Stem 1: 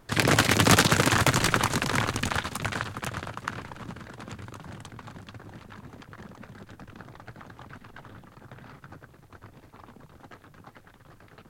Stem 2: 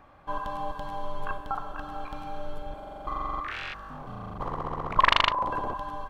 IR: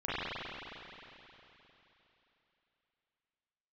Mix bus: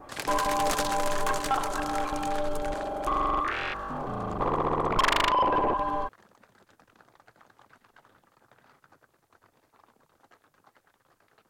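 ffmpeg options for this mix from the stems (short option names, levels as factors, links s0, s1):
-filter_complex "[0:a]bass=f=250:g=-10,treble=f=4000:g=7,volume=0.211[s0];[1:a]equalizer=f=370:w=1.1:g=8.5,adynamicequalizer=threshold=0.0178:dfrequency=2000:dqfactor=0.7:tfrequency=2000:tqfactor=0.7:attack=5:release=100:ratio=0.375:range=3:mode=cutabove:tftype=highshelf,volume=1.26[s1];[s0][s1]amix=inputs=2:normalize=0,equalizer=f=890:t=o:w=2.5:g=4.5,asoftclip=type=tanh:threshold=0.126"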